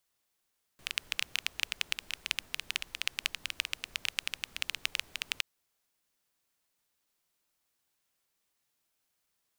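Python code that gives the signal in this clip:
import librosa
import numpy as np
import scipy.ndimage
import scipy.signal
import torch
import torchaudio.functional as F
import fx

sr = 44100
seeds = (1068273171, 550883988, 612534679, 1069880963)

y = fx.rain(sr, seeds[0], length_s=4.62, drops_per_s=12.0, hz=2700.0, bed_db=-20)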